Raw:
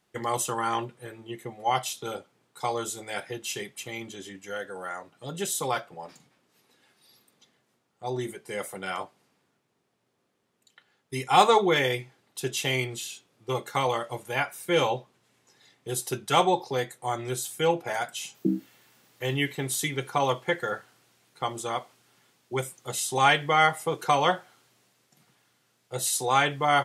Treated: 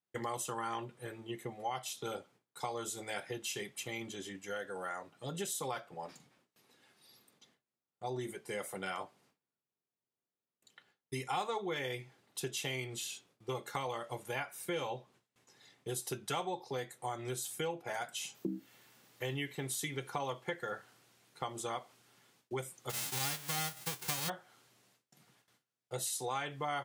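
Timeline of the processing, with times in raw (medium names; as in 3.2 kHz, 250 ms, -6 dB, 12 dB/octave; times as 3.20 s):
22.89–24.28 s: formants flattened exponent 0.1
whole clip: gate with hold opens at -56 dBFS; compression 4:1, threshold -33 dBFS; trim -3 dB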